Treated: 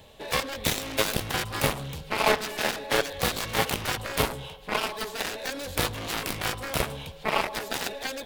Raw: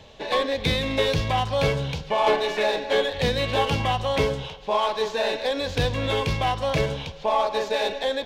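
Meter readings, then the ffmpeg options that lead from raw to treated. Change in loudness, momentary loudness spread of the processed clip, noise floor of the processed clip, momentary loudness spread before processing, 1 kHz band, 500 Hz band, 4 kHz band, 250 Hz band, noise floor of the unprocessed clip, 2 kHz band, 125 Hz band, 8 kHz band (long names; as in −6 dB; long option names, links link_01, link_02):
−4.0 dB, 6 LU, −46 dBFS, 4 LU, −5.5 dB, −8.0 dB, −2.5 dB, −4.5 dB, −41 dBFS, −0.5 dB, −7.5 dB, +8.5 dB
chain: -af "aexciter=amount=7.1:drive=6.6:freq=8500,aeval=exprs='0.422*(cos(1*acos(clip(val(0)/0.422,-1,1)))-cos(1*PI/2))+0.106*(cos(7*acos(clip(val(0)/0.422,-1,1)))-cos(7*PI/2))':channel_layout=same,volume=-1.5dB"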